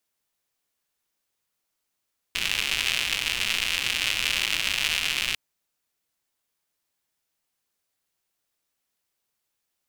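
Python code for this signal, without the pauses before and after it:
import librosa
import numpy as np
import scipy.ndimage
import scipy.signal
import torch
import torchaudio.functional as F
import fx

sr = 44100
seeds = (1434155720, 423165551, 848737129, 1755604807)

y = fx.rain(sr, seeds[0], length_s=3.0, drops_per_s=170.0, hz=2700.0, bed_db=-15.0)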